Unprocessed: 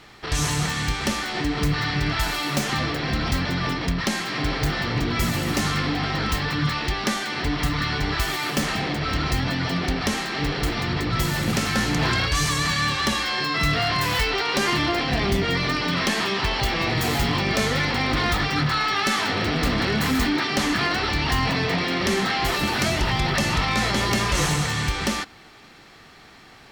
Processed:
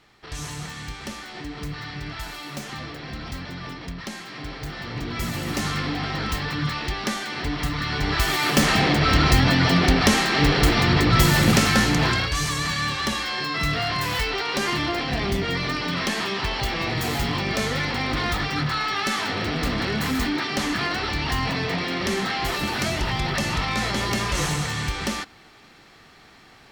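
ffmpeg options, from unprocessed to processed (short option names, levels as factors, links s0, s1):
-af "volume=2.11,afade=t=in:st=4.66:d=1.02:silence=0.421697,afade=t=in:st=7.83:d=0.96:silence=0.354813,afade=t=out:st=11.44:d=0.86:silence=0.354813"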